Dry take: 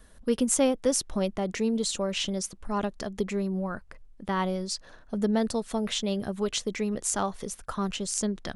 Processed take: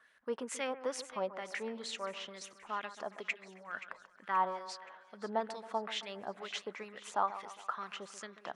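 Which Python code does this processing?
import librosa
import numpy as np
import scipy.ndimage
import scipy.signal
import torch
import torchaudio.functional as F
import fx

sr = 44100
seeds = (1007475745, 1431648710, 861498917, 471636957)

y = fx.low_shelf(x, sr, hz=72.0, db=-11.5)
y = fx.over_compress(y, sr, threshold_db=-36.0, ratio=-0.5, at=(3.28, 4.26), fade=0.02)
y = fx.filter_lfo_bandpass(y, sr, shape='sine', hz=2.2, low_hz=870.0, high_hz=2200.0, q=2.3)
y = fx.echo_split(y, sr, split_hz=1800.0, low_ms=136, high_ms=526, feedback_pct=52, wet_db=-13.0)
y = y * 10.0 ** (2.0 / 20.0)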